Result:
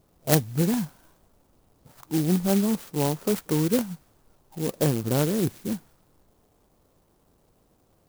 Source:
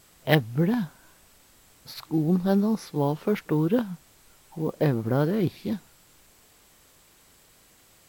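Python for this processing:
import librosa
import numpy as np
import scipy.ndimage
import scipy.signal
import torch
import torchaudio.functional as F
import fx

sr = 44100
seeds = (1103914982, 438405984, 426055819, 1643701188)

y = fx.env_lowpass(x, sr, base_hz=890.0, full_db=-21.5)
y = fx.clock_jitter(y, sr, seeds[0], jitter_ms=0.12)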